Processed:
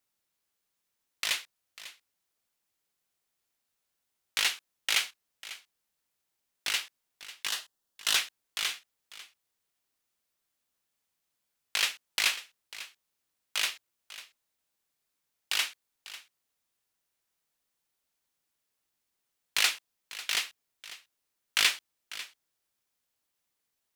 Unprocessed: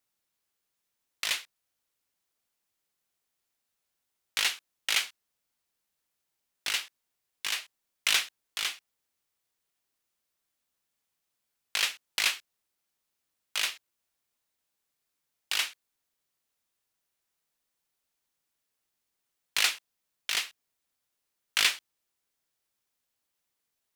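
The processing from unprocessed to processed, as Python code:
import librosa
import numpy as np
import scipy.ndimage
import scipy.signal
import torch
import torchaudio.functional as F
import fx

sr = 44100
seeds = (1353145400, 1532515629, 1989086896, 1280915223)

y = fx.peak_eq(x, sr, hz=2300.0, db=-15.0, octaves=0.25, at=(7.48, 8.16))
y = y + 10.0 ** (-16.0 / 20.0) * np.pad(y, (int(546 * sr / 1000.0), 0))[:len(y)]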